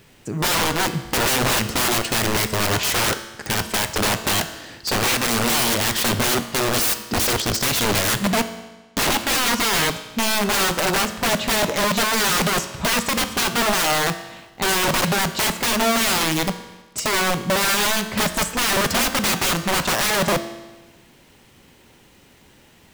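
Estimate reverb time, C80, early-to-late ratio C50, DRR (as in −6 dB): 1.2 s, 13.0 dB, 11.5 dB, 9.0 dB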